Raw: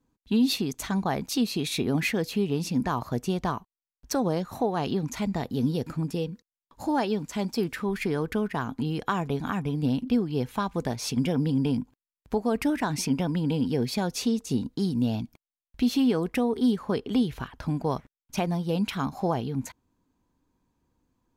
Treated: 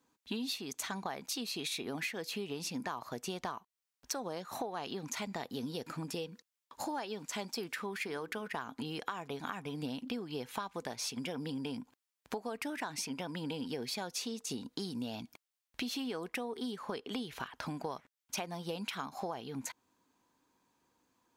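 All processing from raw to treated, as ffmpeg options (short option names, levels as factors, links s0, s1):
-filter_complex "[0:a]asettb=1/sr,asplit=3[s0][s1][s2];[s0]atrim=end=8.074[s3];[s1]atrim=start=8.07:end=8.47,asetpts=PTS-STARTPTS,afade=t=in:d=0.004:c=qsin,afade=t=out:st=0.396:d=0.004:c=qsin,bass=f=250:g=-3,treble=f=4000:g=0,bandreject=f=60:t=h:w=6,bandreject=f=120:t=h:w=6,bandreject=f=180:t=h:w=6,bandreject=f=240:t=h:w=6,bandreject=f=300:t=h:w=6,bandreject=f=360:t=h:w=6,bandreject=f=420:t=h:w=6[s4];[s2]atrim=start=8.466[s5];[s3][s4]acrossfade=d=0.004:c1=hsin:c2=qsin[s6];[s6][s5]acrossfade=d=0.004:c1=qsin:c2=hsin,highpass=f=840:p=1,equalizer=f=13000:w=1.5:g=-2.5,acompressor=threshold=0.00708:ratio=6,volume=2.11"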